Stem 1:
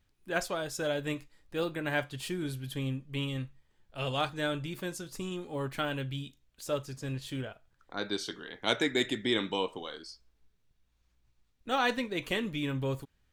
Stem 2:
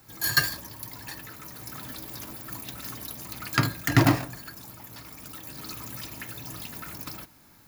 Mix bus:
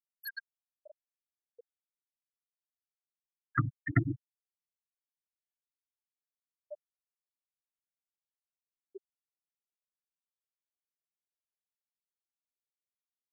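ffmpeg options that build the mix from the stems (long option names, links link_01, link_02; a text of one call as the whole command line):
ffmpeg -i stem1.wav -i stem2.wav -filter_complex "[0:a]acompressor=threshold=-37dB:ratio=2,volume=-2.5dB,asplit=2[link_01][link_02];[1:a]volume=-3dB[link_03];[link_02]apad=whole_len=338550[link_04];[link_03][link_04]sidechaincompress=threshold=-45dB:ratio=6:attack=33:release=160[link_05];[link_01][link_05]amix=inputs=2:normalize=0,afftfilt=real='re*gte(hypot(re,im),0.178)':imag='im*gte(hypot(re,im),0.178)':win_size=1024:overlap=0.75,equalizer=frequency=240:width=1.5:gain=-4" out.wav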